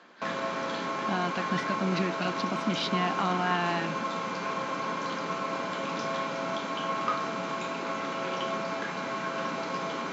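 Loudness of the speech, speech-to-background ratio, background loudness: -31.5 LUFS, 0.5 dB, -32.0 LUFS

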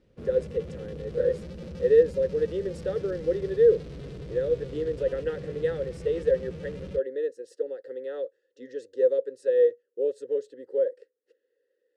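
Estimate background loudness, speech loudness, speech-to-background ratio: -40.5 LUFS, -27.5 LUFS, 13.0 dB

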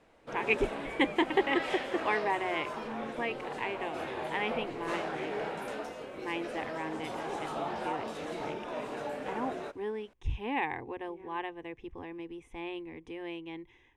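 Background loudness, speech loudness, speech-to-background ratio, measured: -38.5 LUFS, -36.0 LUFS, 2.5 dB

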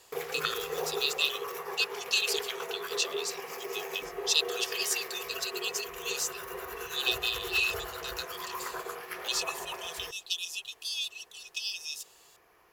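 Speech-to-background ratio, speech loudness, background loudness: 5.5 dB, -32.5 LUFS, -38.0 LUFS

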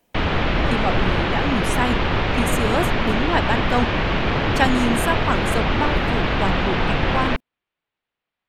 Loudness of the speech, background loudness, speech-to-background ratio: -25.5 LUFS, -21.5 LUFS, -4.0 dB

